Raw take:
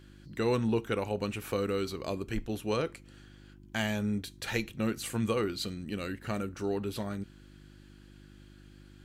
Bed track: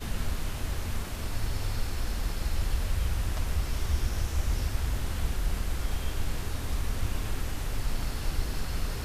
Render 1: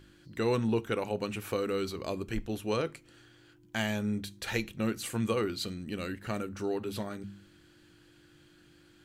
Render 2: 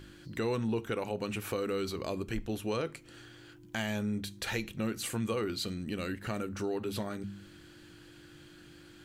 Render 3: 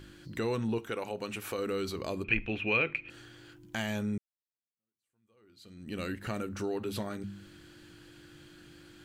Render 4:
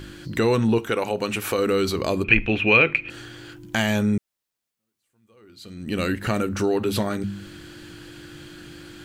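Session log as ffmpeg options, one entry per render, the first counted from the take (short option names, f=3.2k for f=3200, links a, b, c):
-af "bandreject=f=50:t=h:w=4,bandreject=f=100:t=h:w=4,bandreject=f=150:t=h:w=4,bandreject=f=200:t=h:w=4,bandreject=f=250:t=h:w=4"
-filter_complex "[0:a]asplit=2[a][b];[b]alimiter=level_in=3dB:limit=-24dB:level=0:latency=1,volume=-3dB,volume=0dB[c];[a][c]amix=inputs=2:normalize=0,acompressor=threshold=-41dB:ratio=1.5"
-filter_complex "[0:a]asettb=1/sr,asplit=3[a][b][c];[a]atrim=end=0.784[d];[b]atrim=start=0.78:end=1.59,asetpts=PTS-STARTPTS,afade=t=in:d=0.004:c=qsin,afade=t=out:st=0.806:d=0.004:c=qsin,lowshelf=f=240:g=-8.5[e];[c]atrim=start=1.586[f];[d][e]acrossfade=d=0.004:c1=hsin:c2=qsin[g];[g][f]acrossfade=d=0.004:c1=qsin:c2=hsin,asettb=1/sr,asplit=3[h][i][j];[h]atrim=end=2.244[k];[i]atrim=start=2.24:end=3.1,asetpts=PTS-STARTPTS,afade=t=in:d=0.004:c=qsin,afade=t=out:st=0.856:d=0.004:c=qsin,lowpass=f=2.5k:t=q:w=14[l];[j]atrim=start=3.096[m];[k][l]acrossfade=d=0.004:c1=hsin:c2=qsin[n];[n][m]acrossfade=d=0.004:c1=qsin:c2=hsin,asplit=2[o][p];[o]atrim=end=4.18,asetpts=PTS-STARTPTS,afade=t=out:st=4.176:d=0.004:c=hsin[q];[p]atrim=start=4.18,asetpts=PTS-STARTPTS,afade=t=in:d=1.79:c=exp[r];[q][r]concat=n=2:v=0:a=1"
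-af "volume=12dB,alimiter=limit=-2dB:level=0:latency=1"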